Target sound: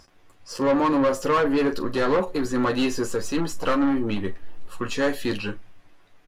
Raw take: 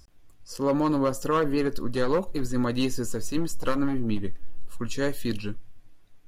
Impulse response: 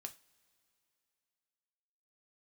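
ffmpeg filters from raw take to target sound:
-filter_complex "[0:a]aecho=1:1:11|43:0.501|0.178,asplit=2[link_01][link_02];[link_02]highpass=frequency=720:poles=1,volume=20dB,asoftclip=type=tanh:threshold=-11dB[link_03];[link_01][link_03]amix=inputs=2:normalize=0,lowpass=frequency=1900:poles=1,volume=-6dB,volume=-1.5dB"

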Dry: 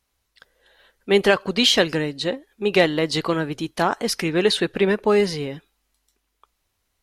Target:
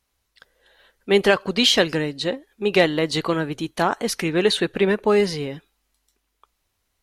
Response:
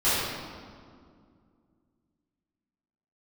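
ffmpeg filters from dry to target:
-filter_complex "[0:a]asettb=1/sr,asplit=3[link_01][link_02][link_03];[link_01]atrim=end=2.834[link_04];[link_02]atrim=start=2.83:end=5.17,asetpts=PTS-STARTPTS,afade=type=in:duration=0.004:curve=qsin,afade=type=out:start_time=2.336:duration=0.004:curve=qsin,bandreject=frequency=5100:width=9[link_05];[link_03]atrim=start=5.166[link_06];[link_04][link_05]acrossfade=duration=0.004:curve1=hsin:curve2=qsin[link_07];[link_07][link_06]acrossfade=duration=0.004:curve1=qsin:curve2=hsin"

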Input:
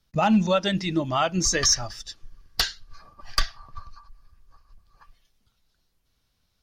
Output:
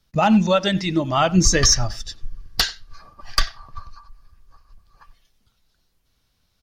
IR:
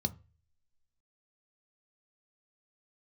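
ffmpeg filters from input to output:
-filter_complex "[0:a]asettb=1/sr,asplit=3[link_01][link_02][link_03];[link_01]atrim=end=1.174[link_04];[link_02]atrim=start=1.17:end=2.6,asetpts=PTS-STARTPTS,afade=type=in:duration=0.004:curve=qsin,afade=type=out:start_time=1.426:duration=0.004:curve=qsin,lowshelf=frequency=240:gain=10[link_05];[link_03]atrim=start=2.596[link_06];[link_04][link_05]acrossfade=duration=0.004:curve1=hsin:curve2=qsin[link_07];[link_07][link_06]acrossfade=duration=0.004:curve1=qsin:curve2=hsin,asplit=2[link_08][link_09];[link_09]adelay=90,highpass=300,lowpass=3400,asoftclip=type=hard:threshold=-14.5dB,volume=-20dB[link_10];[link_08][link_10]amix=inputs=2:normalize=0,volume=4dB"

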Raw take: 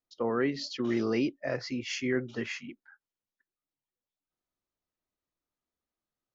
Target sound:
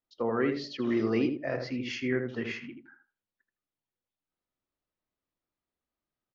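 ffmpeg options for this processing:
ffmpeg -i in.wav -filter_complex "[0:a]lowpass=4000,asplit=2[link_01][link_02];[link_02]adelay=80,lowpass=frequency=1200:poles=1,volume=-4.5dB,asplit=2[link_03][link_04];[link_04]adelay=80,lowpass=frequency=1200:poles=1,volume=0.26,asplit=2[link_05][link_06];[link_06]adelay=80,lowpass=frequency=1200:poles=1,volume=0.26,asplit=2[link_07][link_08];[link_08]adelay=80,lowpass=frequency=1200:poles=1,volume=0.26[link_09];[link_03][link_05][link_07][link_09]amix=inputs=4:normalize=0[link_10];[link_01][link_10]amix=inputs=2:normalize=0" out.wav

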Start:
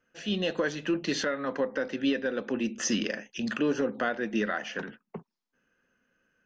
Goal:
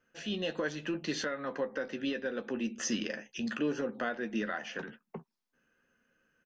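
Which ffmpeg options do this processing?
ffmpeg -i in.wav -filter_complex "[0:a]asplit=2[link_01][link_02];[link_02]adelay=13,volume=-10dB[link_03];[link_01][link_03]amix=inputs=2:normalize=0,asplit=2[link_04][link_05];[link_05]acompressor=threshold=-41dB:ratio=6,volume=-0.5dB[link_06];[link_04][link_06]amix=inputs=2:normalize=0,volume=-7dB" out.wav

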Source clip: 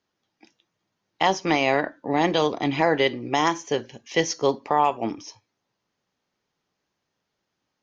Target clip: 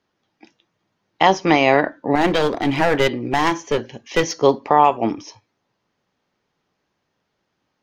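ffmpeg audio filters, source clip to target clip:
ffmpeg -i in.wav -filter_complex "[0:a]lowpass=frequency=3300:poles=1,asettb=1/sr,asplit=3[link_01][link_02][link_03];[link_01]atrim=end=2.154[link_04];[link_02]atrim=start=2.15:end=4.41,asetpts=PTS-STARTPTS,afade=type=in:duration=0.004:curve=qsin,afade=type=out:start_time=2.256:duration=0.004:curve=qsin,aeval=exprs='clip(val(0),-1,0.0562)':channel_layout=same[link_05];[link_03]atrim=start=4.406[link_06];[link_04][link_05]acrossfade=duration=0.004:curve1=hsin:curve2=qsin[link_07];[link_07][link_06]acrossfade=duration=0.004:curve1=qsin:curve2=hsin,volume=7dB" out.wav

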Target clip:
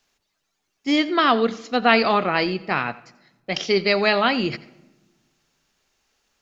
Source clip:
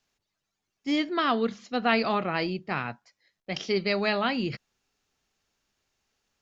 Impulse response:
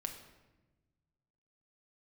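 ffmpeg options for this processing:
-filter_complex "[0:a]equalizer=frequency=110:width=0.7:gain=-6.5,asplit=2[link_01][link_02];[1:a]atrim=start_sample=2205,adelay=87[link_03];[link_02][link_03]afir=irnorm=-1:irlink=0,volume=-16.5dB[link_04];[link_01][link_04]amix=inputs=2:normalize=0,volume=8dB"

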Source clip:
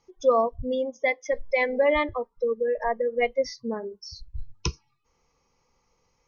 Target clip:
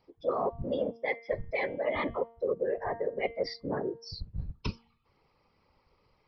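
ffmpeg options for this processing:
ffmpeg -i in.wav -af "aresample=11025,aresample=44100,areverse,acompressor=threshold=-30dB:ratio=6,areverse,afftfilt=real='hypot(re,im)*cos(2*PI*random(0))':imag='hypot(re,im)*sin(2*PI*random(1))':win_size=512:overlap=0.75,bandreject=frequency=230.8:width_type=h:width=4,bandreject=frequency=461.6:width_type=h:width=4,bandreject=frequency=692.4:width_type=h:width=4,bandreject=frequency=923.2:width_type=h:width=4,bandreject=frequency=1154:width_type=h:width=4,bandreject=frequency=1384.8:width_type=h:width=4,bandreject=frequency=1615.6:width_type=h:width=4,bandreject=frequency=1846.4:width_type=h:width=4,bandreject=frequency=2077.2:width_type=h:width=4,bandreject=frequency=2308:width_type=h:width=4,bandreject=frequency=2538.8:width_type=h:width=4,bandreject=frequency=2769.6:width_type=h:width=4,bandreject=frequency=3000.4:width_type=h:width=4,bandreject=frequency=3231.2:width_type=h:width=4,bandreject=frequency=3462:width_type=h:width=4,volume=7.5dB" out.wav

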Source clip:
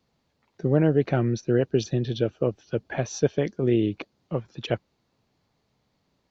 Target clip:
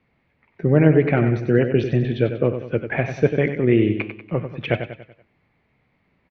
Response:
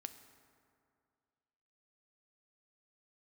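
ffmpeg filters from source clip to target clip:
-filter_complex "[0:a]lowpass=frequency=2200:width_type=q:width=4.3,lowshelf=frequency=470:gain=4.5,asplit=2[link_01][link_02];[link_02]aecho=0:1:95|190|285|380|475:0.355|0.163|0.0751|0.0345|0.0159[link_03];[link_01][link_03]amix=inputs=2:normalize=0,flanger=delay=7.9:depth=4.4:regen=-83:speed=1.2:shape=triangular,volume=6dB"

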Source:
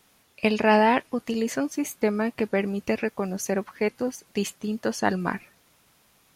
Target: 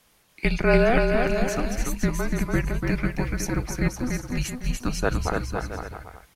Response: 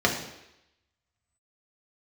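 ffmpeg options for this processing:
-filter_complex "[0:a]afreqshift=-250,asplit=2[link_01][link_02];[link_02]aecho=0:1:290|507.5|670.6|793|884.7:0.631|0.398|0.251|0.158|0.1[link_03];[link_01][link_03]amix=inputs=2:normalize=0"

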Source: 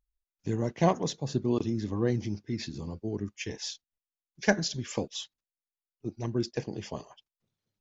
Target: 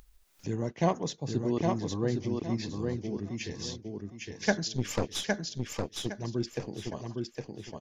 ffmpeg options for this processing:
ffmpeg -i in.wav -filter_complex "[0:a]asplit=3[link_01][link_02][link_03];[link_01]afade=type=out:start_time=4.75:duration=0.02[link_04];[link_02]aeval=exprs='0.178*(cos(1*acos(clip(val(0)/0.178,-1,1)))-cos(1*PI/2))+0.0282*(cos(5*acos(clip(val(0)/0.178,-1,1)))-cos(5*PI/2))+0.0398*(cos(8*acos(clip(val(0)/0.178,-1,1)))-cos(8*PI/2))':channel_layout=same,afade=type=in:start_time=4.75:duration=0.02,afade=type=out:start_time=6.06:duration=0.02[link_05];[link_03]afade=type=in:start_time=6.06:duration=0.02[link_06];[link_04][link_05][link_06]amix=inputs=3:normalize=0,aecho=1:1:811|1622|2433|3244:0.668|0.174|0.0452|0.0117,acompressor=mode=upward:threshold=-35dB:ratio=2.5,volume=-2.5dB" out.wav

